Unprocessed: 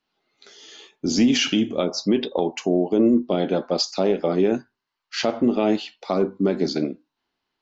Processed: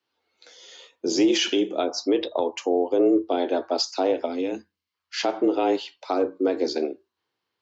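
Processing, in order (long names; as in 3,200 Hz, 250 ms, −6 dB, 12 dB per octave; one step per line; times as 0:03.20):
gain on a spectral selection 0:04.25–0:04.94, 220–1,900 Hz −8 dB
frequency shifter +85 Hz
level −2 dB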